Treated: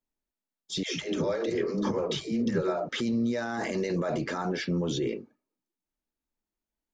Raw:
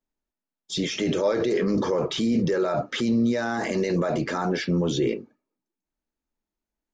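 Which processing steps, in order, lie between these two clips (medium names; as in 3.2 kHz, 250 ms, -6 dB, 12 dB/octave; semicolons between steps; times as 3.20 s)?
peak limiter -17.5 dBFS, peak gain reduction 5 dB; 0.83–2.89 s: phase dispersion lows, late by 150 ms, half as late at 350 Hz; trim -3.5 dB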